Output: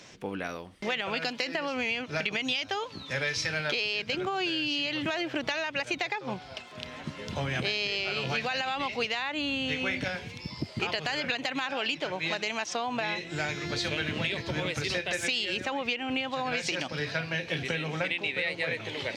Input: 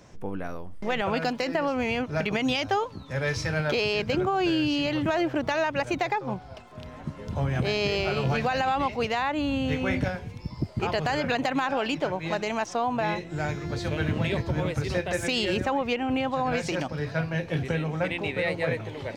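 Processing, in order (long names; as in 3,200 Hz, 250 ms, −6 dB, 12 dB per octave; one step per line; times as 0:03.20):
meter weighting curve D
downward compressor, threshold −27 dBFS, peak gain reduction 13 dB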